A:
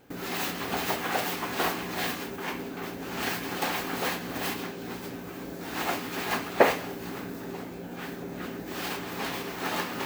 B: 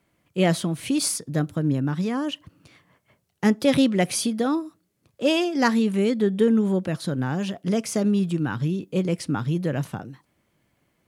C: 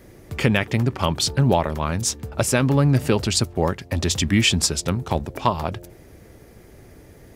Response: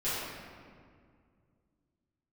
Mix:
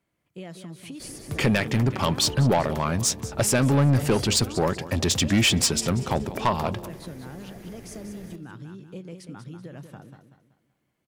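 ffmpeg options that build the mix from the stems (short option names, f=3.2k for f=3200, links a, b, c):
-filter_complex "[1:a]acompressor=threshold=-28dB:ratio=6,volume=-9dB,asplit=2[a][b];[b]volume=-8dB[c];[2:a]equalizer=f=71:w=2.4:g=-8,adelay=1000,volume=1.5dB,asplit=2[d][e];[e]volume=-19dB[f];[c][f]amix=inputs=2:normalize=0,aecho=0:1:190|380|570|760|950:1|0.37|0.137|0.0507|0.0187[g];[a][d][g]amix=inputs=3:normalize=0,asoftclip=type=tanh:threshold=-14dB"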